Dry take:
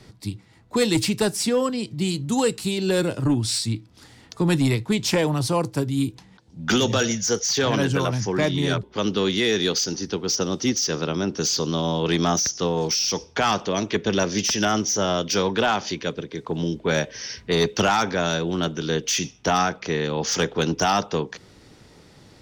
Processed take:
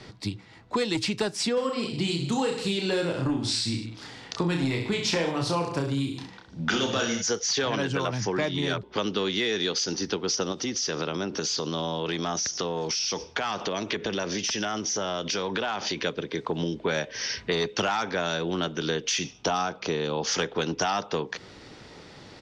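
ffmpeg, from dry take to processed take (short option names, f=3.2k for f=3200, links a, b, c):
-filter_complex "[0:a]asplit=3[a][b][c];[a]afade=t=out:st=1.56:d=0.02[d];[b]aecho=1:1:30|64.5|104.2|149.8|202.3:0.631|0.398|0.251|0.158|0.1,afade=t=in:st=1.56:d=0.02,afade=t=out:st=7.21:d=0.02[e];[c]afade=t=in:st=7.21:d=0.02[f];[d][e][f]amix=inputs=3:normalize=0,asettb=1/sr,asplit=3[g][h][i];[g]atrim=end=10.524[j];[h]atrim=start=10.52:end=16.03,asetpts=PTS-STARTPTS,afade=t=in:d=0.004:c=qsin,afade=t=out:st=5.506:d=0.004:c=qsin,acompressor=threshold=-27dB:ratio=6:attack=3.2:release=140:knee=1:detection=peak[k];[i]atrim=start=16.026[l];[j][k]acrossfade=d=0.004:c1=hsin:c2=qsin[m];[m][l]acrossfade=d=0.004:c1=qsin:c2=hsin,asettb=1/sr,asplit=3[n][o][p];[n]atrim=end=19.334[q];[o]atrim=start=19.33:end=20.27,asetpts=PTS-STARTPTS,afade=t=in:d=0.004:c=qsin,afade=t=out:st=0.936:d=0.004:c=qsin,equalizer=f=1.9k:w=2.5:g=-8.5[r];[p]atrim=start=20.266[s];[q][r]acrossfade=d=0.004:c1=hsin:c2=qsin[t];[t][s]acrossfade=d=0.004:c1=qsin:c2=hsin,lowpass=5.2k,lowshelf=f=270:g=-8,acompressor=threshold=-32dB:ratio=4,volume=6.5dB"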